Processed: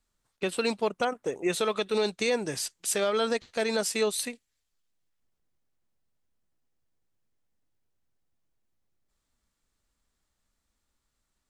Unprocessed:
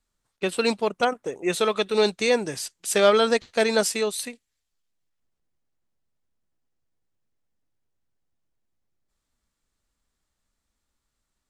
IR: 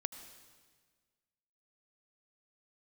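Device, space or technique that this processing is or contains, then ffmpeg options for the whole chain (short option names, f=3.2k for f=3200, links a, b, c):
stacked limiters: -af "alimiter=limit=-11dB:level=0:latency=1:release=333,alimiter=limit=-16.5dB:level=0:latency=1:release=237"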